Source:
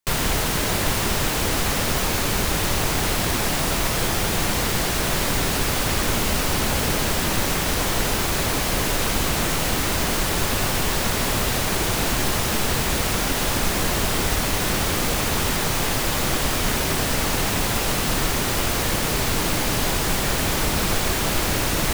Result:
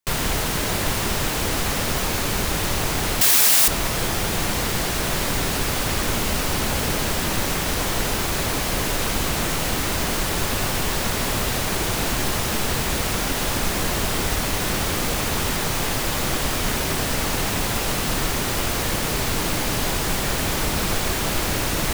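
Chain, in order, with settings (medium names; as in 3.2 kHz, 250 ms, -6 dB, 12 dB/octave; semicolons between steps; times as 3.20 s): 3.21–3.68 s: tilt EQ +4 dB/octave; trim -1 dB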